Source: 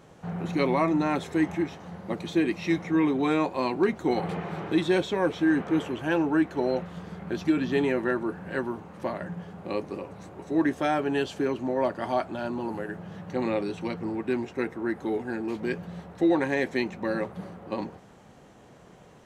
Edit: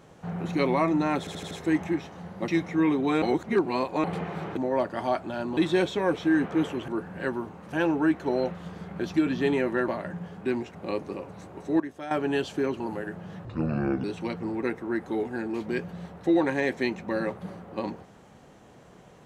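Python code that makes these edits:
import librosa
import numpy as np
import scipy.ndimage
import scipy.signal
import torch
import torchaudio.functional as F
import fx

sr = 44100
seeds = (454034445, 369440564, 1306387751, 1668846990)

y = fx.edit(x, sr, fx.stutter(start_s=1.19, slice_s=0.08, count=5),
    fx.cut(start_s=2.16, length_s=0.48),
    fx.reverse_span(start_s=3.38, length_s=0.82),
    fx.move(start_s=8.19, length_s=0.85, to_s=6.04),
    fx.clip_gain(start_s=10.62, length_s=0.31, db=-11.5),
    fx.move(start_s=11.62, length_s=1.0, to_s=4.73),
    fx.speed_span(start_s=13.27, length_s=0.37, speed=0.63),
    fx.move(start_s=14.23, length_s=0.34, to_s=9.57), tone=tone)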